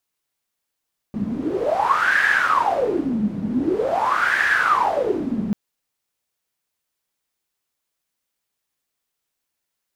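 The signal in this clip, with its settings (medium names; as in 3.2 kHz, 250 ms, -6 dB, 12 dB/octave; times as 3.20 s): wind-like swept noise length 4.39 s, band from 200 Hz, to 1.7 kHz, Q 12, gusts 2, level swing 6 dB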